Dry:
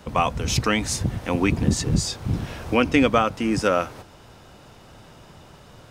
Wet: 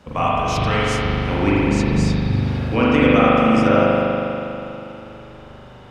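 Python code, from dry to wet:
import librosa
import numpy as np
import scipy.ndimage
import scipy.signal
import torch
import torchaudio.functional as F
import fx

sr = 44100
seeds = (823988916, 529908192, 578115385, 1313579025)

y = fx.high_shelf(x, sr, hz=7900.0, db=-11.0)
y = fx.rev_spring(y, sr, rt60_s=3.1, pass_ms=(40,), chirp_ms=55, drr_db=-8.0)
y = y * 10.0 ** (-3.0 / 20.0)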